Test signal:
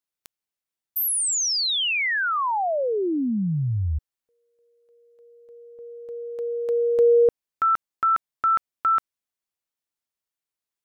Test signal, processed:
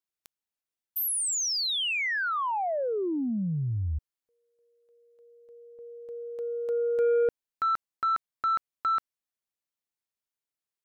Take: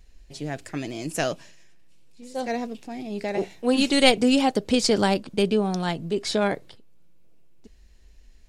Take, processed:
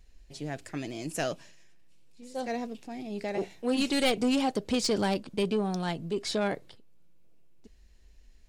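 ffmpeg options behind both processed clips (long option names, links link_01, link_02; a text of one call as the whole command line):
ffmpeg -i in.wav -af "asoftclip=type=tanh:threshold=-15dB,volume=-4.5dB" out.wav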